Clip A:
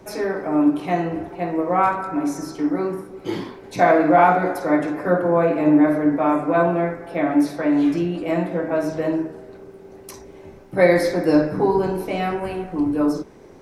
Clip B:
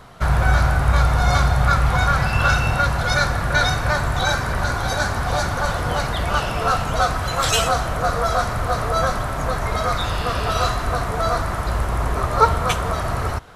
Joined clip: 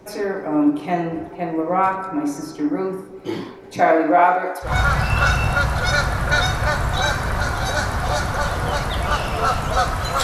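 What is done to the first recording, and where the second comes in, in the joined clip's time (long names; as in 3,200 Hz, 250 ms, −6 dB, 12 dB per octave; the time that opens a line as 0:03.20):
clip A
0:03.80–0:04.76: high-pass filter 200 Hz → 660 Hz
0:04.69: continue with clip B from 0:01.92, crossfade 0.14 s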